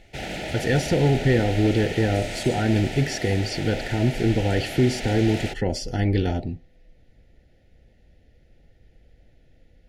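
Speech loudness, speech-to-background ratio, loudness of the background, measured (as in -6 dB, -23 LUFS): -23.5 LUFS, 9.0 dB, -32.5 LUFS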